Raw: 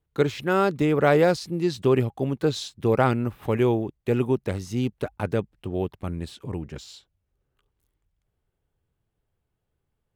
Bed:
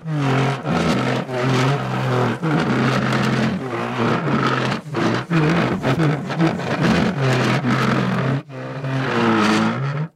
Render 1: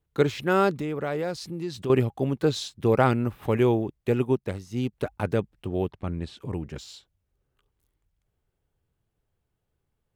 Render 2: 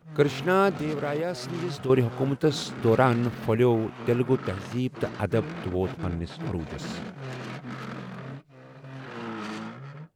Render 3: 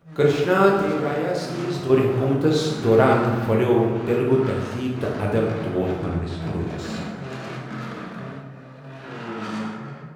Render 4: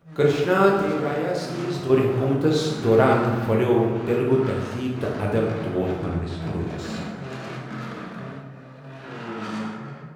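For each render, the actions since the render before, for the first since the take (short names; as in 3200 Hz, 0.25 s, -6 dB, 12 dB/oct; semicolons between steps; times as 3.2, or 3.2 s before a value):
0.74–1.9 compressor 2:1, threshold -34 dBFS; 4.11–4.93 upward expander, over -37 dBFS; 5.9–6.37 air absorption 75 m
add bed -19 dB
plate-style reverb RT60 1.4 s, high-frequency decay 0.55×, DRR -2.5 dB
gain -1 dB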